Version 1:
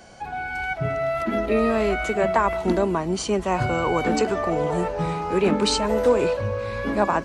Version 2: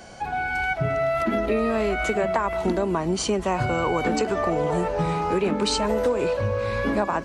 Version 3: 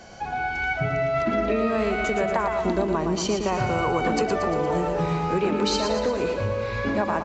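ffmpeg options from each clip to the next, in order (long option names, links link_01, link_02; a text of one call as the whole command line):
ffmpeg -i in.wav -af "acompressor=threshold=-23dB:ratio=6,volume=3.5dB" out.wav
ffmpeg -i in.wav -filter_complex "[0:a]asplit=2[link_01][link_02];[link_02]aecho=0:1:116|232|348|464|580|696|812:0.473|0.27|0.154|0.0876|0.0499|0.0285|0.0162[link_03];[link_01][link_03]amix=inputs=2:normalize=0,volume=-1.5dB" -ar 16000 -c:a libvorbis -b:a 96k out.ogg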